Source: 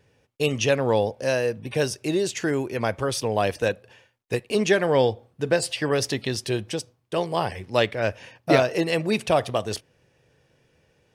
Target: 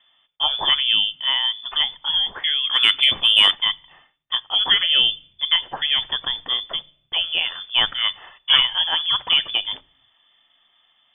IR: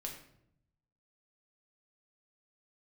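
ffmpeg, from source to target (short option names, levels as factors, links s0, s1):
-filter_complex "[0:a]lowpass=f=3100:t=q:w=0.5098,lowpass=f=3100:t=q:w=0.6013,lowpass=f=3100:t=q:w=0.9,lowpass=f=3100:t=q:w=2.563,afreqshift=-3600,asplit=2[s0][s1];[s1]aemphasis=mode=reproduction:type=riaa[s2];[1:a]atrim=start_sample=2205,afade=t=out:st=0.39:d=0.01,atrim=end_sample=17640[s3];[s2][s3]afir=irnorm=-1:irlink=0,volume=0.133[s4];[s0][s4]amix=inputs=2:normalize=0,asplit=3[s5][s6][s7];[s5]afade=t=out:st=2.63:d=0.02[s8];[s6]acontrast=81,afade=t=in:st=2.63:d=0.02,afade=t=out:st=3.53:d=0.02[s9];[s7]afade=t=in:st=3.53:d=0.02[s10];[s8][s9][s10]amix=inputs=3:normalize=0,volume=1.26"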